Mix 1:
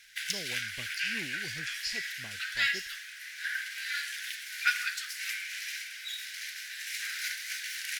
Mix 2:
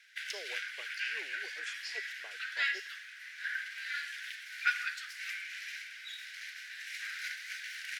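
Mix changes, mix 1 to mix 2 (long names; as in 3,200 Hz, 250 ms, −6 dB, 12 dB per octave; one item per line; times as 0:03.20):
speech: add elliptic high-pass filter 420 Hz, stop band 70 dB
background: add low-pass filter 1,900 Hz 6 dB per octave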